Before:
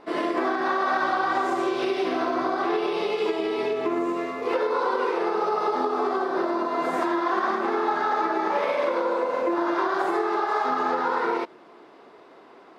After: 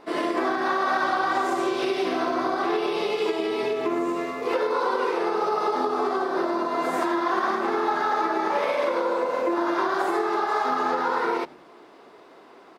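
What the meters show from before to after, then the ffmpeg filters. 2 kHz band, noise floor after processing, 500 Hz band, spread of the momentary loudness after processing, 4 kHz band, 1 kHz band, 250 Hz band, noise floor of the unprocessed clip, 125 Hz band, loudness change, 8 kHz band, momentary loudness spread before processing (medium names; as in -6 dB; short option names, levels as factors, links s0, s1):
+0.5 dB, -50 dBFS, 0.0 dB, 2 LU, +2.0 dB, 0.0 dB, 0.0 dB, -50 dBFS, +1.0 dB, 0.0 dB, no reading, 2 LU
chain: -filter_complex "[0:a]highshelf=f=6100:g=8.5,asplit=2[s0][s1];[s1]asplit=2[s2][s3];[s2]adelay=94,afreqshift=-96,volume=0.0631[s4];[s3]adelay=188,afreqshift=-192,volume=0.0234[s5];[s4][s5]amix=inputs=2:normalize=0[s6];[s0][s6]amix=inputs=2:normalize=0"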